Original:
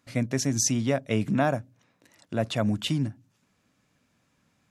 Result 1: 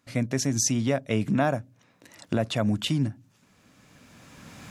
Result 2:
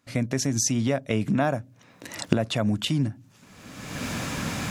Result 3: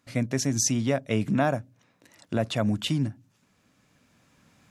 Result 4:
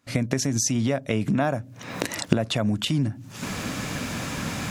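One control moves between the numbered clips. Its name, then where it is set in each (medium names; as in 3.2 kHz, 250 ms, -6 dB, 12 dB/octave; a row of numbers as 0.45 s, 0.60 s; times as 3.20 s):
recorder AGC, rising by: 14 dB/s, 36 dB/s, 5 dB/s, 88 dB/s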